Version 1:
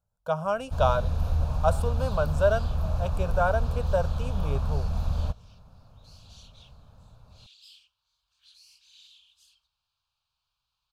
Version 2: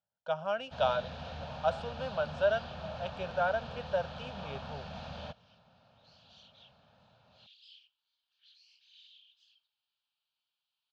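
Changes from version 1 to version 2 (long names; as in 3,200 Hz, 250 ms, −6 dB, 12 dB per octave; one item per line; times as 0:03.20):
speech −3.5 dB
second sound −7.0 dB
master: add loudspeaker in its box 260–4,900 Hz, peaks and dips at 300 Hz −8 dB, 440 Hz −7 dB, 1,100 Hz −9 dB, 1,900 Hz +7 dB, 3,100 Hz +7 dB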